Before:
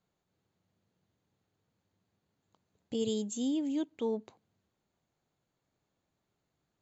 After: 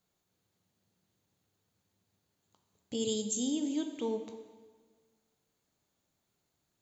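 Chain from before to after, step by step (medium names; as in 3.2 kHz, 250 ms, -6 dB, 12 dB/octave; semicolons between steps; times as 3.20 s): treble shelf 4 kHz +11.5 dB; plate-style reverb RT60 1.5 s, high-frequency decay 0.85×, DRR 5.5 dB; trim -2 dB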